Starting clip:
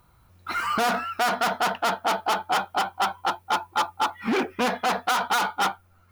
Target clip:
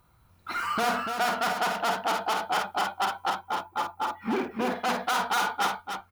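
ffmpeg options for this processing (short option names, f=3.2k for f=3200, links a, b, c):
-filter_complex "[0:a]asettb=1/sr,asplit=3[a][b][c];[a]atrim=end=3.344[d];[b]atrim=start=3.34:end=4.71,asetpts=PTS-STARTPTS,afade=t=in:d=0.004:c=qsin,afade=t=out:st=1.366:d=0.004:c=qsin,equalizer=f=5.2k:w=0.3:g=-7.5[e];[c]atrim=start=4.706[f];[d][e]acrossfade=d=0.004:c1=hsin:c2=qsin[g];[g][f]acrossfade=d=0.004:c1=qsin:c2=hsin,aecho=1:1:49.56|288.6:0.447|0.447,volume=-4dB"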